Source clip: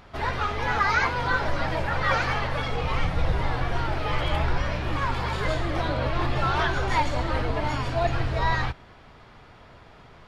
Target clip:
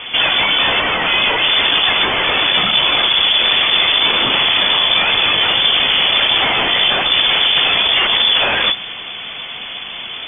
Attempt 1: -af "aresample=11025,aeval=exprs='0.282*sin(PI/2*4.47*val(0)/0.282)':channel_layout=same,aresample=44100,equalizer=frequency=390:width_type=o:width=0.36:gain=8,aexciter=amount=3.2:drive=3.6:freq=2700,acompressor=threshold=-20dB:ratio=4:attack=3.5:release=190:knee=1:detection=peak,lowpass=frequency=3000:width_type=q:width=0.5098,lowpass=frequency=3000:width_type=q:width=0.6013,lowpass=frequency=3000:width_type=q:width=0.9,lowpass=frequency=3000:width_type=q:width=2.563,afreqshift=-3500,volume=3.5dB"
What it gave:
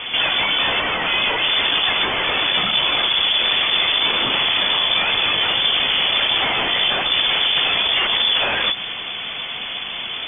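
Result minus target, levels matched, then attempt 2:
downward compressor: peak gain reduction +4.5 dB
-af "aresample=11025,aeval=exprs='0.282*sin(PI/2*4.47*val(0)/0.282)':channel_layout=same,aresample=44100,equalizer=frequency=390:width_type=o:width=0.36:gain=8,aexciter=amount=3.2:drive=3.6:freq=2700,acompressor=threshold=-14dB:ratio=4:attack=3.5:release=190:knee=1:detection=peak,lowpass=frequency=3000:width_type=q:width=0.5098,lowpass=frequency=3000:width_type=q:width=0.6013,lowpass=frequency=3000:width_type=q:width=0.9,lowpass=frequency=3000:width_type=q:width=2.563,afreqshift=-3500,volume=3.5dB"

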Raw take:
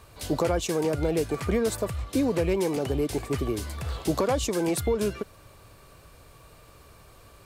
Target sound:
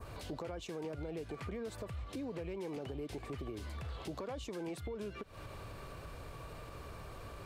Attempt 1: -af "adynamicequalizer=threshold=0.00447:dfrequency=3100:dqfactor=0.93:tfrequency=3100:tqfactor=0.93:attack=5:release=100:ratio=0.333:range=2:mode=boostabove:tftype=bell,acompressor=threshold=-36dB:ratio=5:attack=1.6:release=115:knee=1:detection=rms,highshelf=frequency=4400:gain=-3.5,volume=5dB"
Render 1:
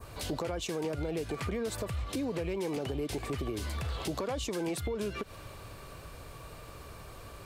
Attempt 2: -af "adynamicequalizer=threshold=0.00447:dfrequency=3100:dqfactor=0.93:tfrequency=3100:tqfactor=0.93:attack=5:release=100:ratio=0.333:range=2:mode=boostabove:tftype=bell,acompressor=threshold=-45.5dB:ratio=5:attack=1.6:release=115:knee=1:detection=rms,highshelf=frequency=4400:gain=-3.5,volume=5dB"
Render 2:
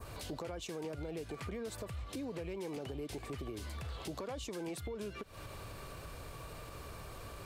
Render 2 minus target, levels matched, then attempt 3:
8,000 Hz band +5.5 dB
-af "adynamicequalizer=threshold=0.00447:dfrequency=3100:dqfactor=0.93:tfrequency=3100:tqfactor=0.93:attack=5:release=100:ratio=0.333:range=2:mode=boostabove:tftype=bell,acompressor=threshold=-45.5dB:ratio=5:attack=1.6:release=115:knee=1:detection=rms,highshelf=frequency=4400:gain=-11.5,volume=5dB"

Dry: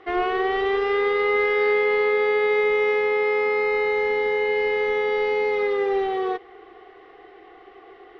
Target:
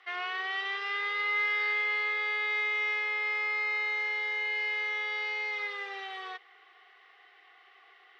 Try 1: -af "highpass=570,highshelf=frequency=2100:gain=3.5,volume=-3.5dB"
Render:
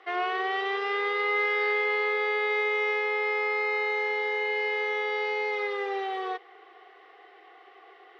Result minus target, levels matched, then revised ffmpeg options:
500 Hz band +13.0 dB
-af "highpass=1500,highshelf=frequency=2100:gain=3.5,volume=-3.5dB"

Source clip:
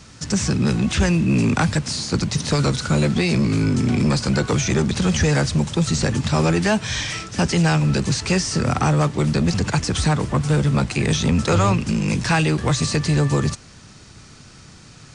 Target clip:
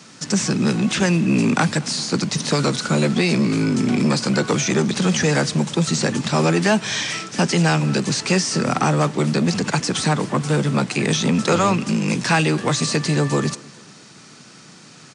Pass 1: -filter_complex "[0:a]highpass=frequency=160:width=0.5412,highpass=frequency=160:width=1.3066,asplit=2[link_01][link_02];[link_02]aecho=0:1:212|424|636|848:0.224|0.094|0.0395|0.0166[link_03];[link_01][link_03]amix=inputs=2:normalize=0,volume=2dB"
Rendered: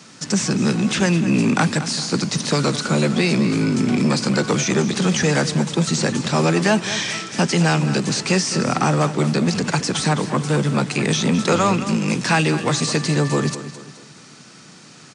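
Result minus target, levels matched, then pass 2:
echo-to-direct +10.5 dB
-filter_complex "[0:a]highpass=frequency=160:width=0.5412,highpass=frequency=160:width=1.3066,asplit=2[link_01][link_02];[link_02]aecho=0:1:212|424|636:0.0668|0.0281|0.0118[link_03];[link_01][link_03]amix=inputs=2:normalize=0,volume=2dB"

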